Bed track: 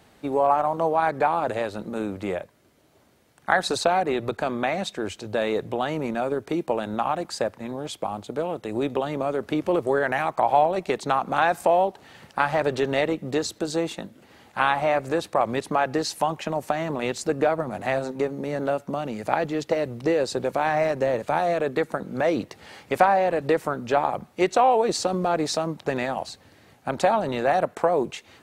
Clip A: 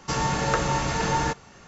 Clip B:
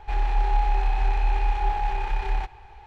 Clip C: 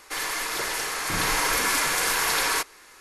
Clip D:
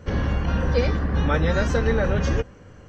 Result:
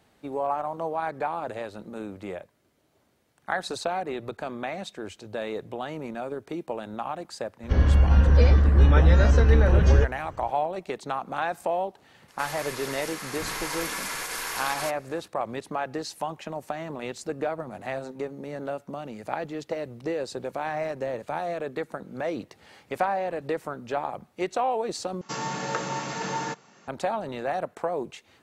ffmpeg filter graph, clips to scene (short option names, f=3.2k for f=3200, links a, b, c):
-filter_complex "[0:a]volume=-7.5dB[a];[4:a]equalizer=f=62:t=o:w=0.85:g=12[b];[3:a]alimiter=limit=-14dB:level=0:latency=1:release=71[c];[1:a]highpass=f=150:w=0.5412,highpass=f=150:w=1.3066[d];[a]asplit=2[e][f];[e]atrim=end=25.214[g];[d]atrim=end=1.67,asetpts=PTS-STARTPTS,volume=-5.5dB[h];[f]atrim=start=26.876[i];[b]atrim=end=2.88,asetpts=PTS-STARTPTS,volume=-2.5dB,afade=t=in:d=0.004:c=hsin,afade=t=out:st=2.876:d=0.004:c=hsin,adelay=7630[j];[c]atrim=end=3,asetpts=PTS-STARTPTS,volume=-8dB,afade=t=in:d=0.004:c=hsin,afade=t=out:st=2.996:d=0.004:c=hsin,adelay=12280[k];[g][h]acrossfade=d=0.004:c1=hsin:c2=hsin[l];[l][i]acrossfade=d=0.004:c1=hsin:c2=hsin[m];[m][j][k]amix=inputs=3:normalize=0"